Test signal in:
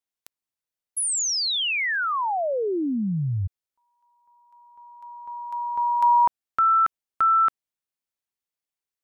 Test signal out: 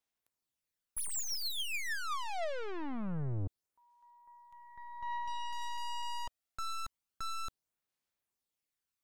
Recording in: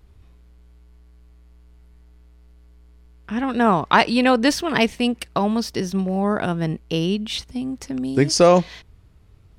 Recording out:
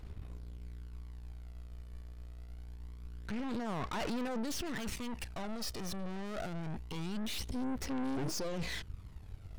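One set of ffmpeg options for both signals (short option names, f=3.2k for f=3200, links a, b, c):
-af "areverse,acompressor=threshold=-29dB:ratio=12:attack=0.42:release=36:detection=peak,areverse,aeval=exprs='(tanh(141*val(0)+0.8)-tanh(0.8))/141':c=same,aphaser=in_gain=1:out_gain=1:delay=1.7:decay=0.38:speed=0.25:type=sinusoidal,volume=4.5dB"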